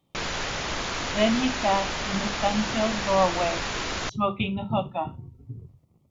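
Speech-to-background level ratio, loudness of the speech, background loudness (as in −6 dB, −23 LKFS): 2.0 dB, −27.0 LKFS, −29.0 LKFS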